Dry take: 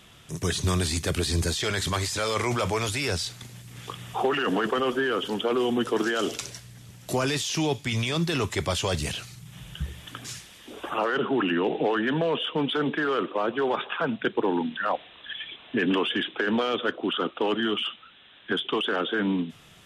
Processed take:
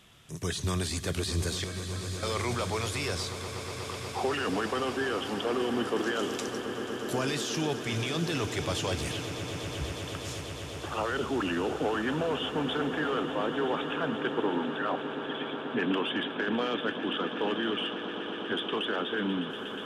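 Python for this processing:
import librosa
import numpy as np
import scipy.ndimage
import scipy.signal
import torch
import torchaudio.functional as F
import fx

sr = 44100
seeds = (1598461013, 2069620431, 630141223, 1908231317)

y = fx.stiff_resonator(x, sr, f0_hz=95.0, decay_s=0.63, stiffness=0.03, at=(1.64, 2.23))
y = fx.echo_swell(y, sr, ms=121, loudest=8, wet_db=-15.0)
y = F.gain(torch.from_numpy(y), -5.5).numpy()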